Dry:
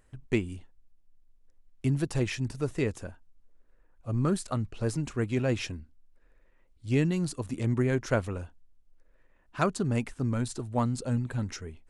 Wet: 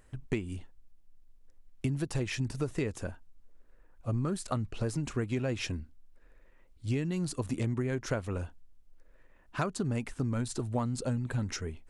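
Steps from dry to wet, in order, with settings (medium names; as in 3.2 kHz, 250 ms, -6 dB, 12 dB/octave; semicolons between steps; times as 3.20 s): compression 12:1, threshold -31 dBFS, peak gain reduction 11.5 dB; trim +3.5 dB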